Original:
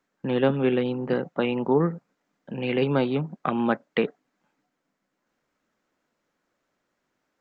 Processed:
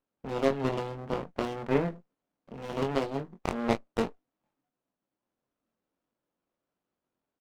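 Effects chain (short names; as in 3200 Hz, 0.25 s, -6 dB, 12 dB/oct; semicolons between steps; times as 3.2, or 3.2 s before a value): added harmonics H 3 -14 dB, 6 -28 dB, 8 -19 dB, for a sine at -7.5 dBFS; early reflections 22 ms -5.5 dB, 39 ms -17.5 dB; running maximum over 17 samples; gain -2 dB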